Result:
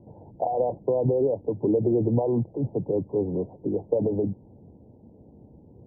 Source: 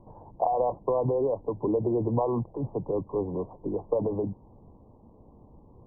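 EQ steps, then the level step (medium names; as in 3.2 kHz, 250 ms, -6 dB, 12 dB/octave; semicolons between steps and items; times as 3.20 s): boxcar filter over 39 samples; high-pass 85 Hz; +5.5 dB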